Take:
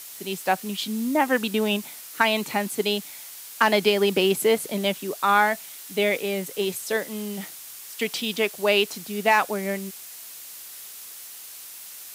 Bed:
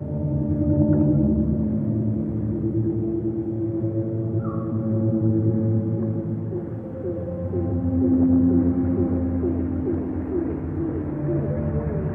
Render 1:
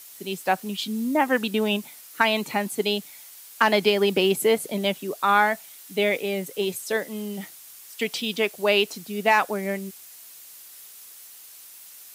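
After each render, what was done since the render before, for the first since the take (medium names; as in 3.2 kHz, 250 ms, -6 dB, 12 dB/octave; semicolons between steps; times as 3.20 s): noise reduction 6 dB, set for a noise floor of -41 dBFS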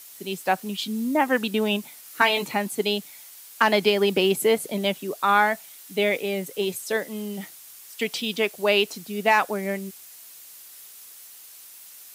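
2.04–2.48 s: doubling 16 ms -3 dB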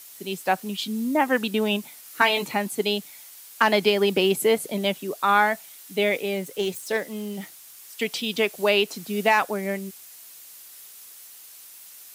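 6.36–7.78 s: self-modulated delay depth 0.064 ms; 8.36–9.42 s: three bands compressed up and down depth 40%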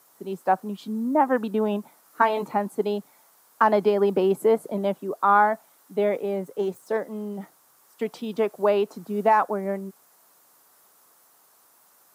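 high-pass 140 Hz; resonant high shelf 1.7 kHz -14 dB, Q 1.5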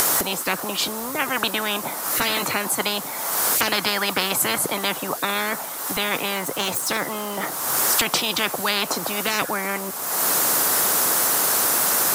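upward compressor, threshold -32 dBFS; spectrum-flattening compressor 10:1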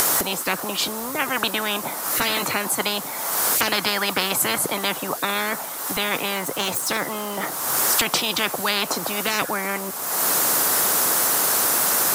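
no audible change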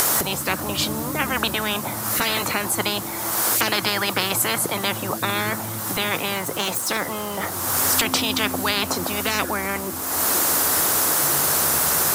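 add bed -12.5 dB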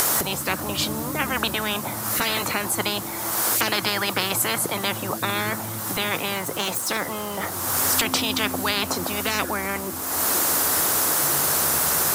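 trim -1.5 dB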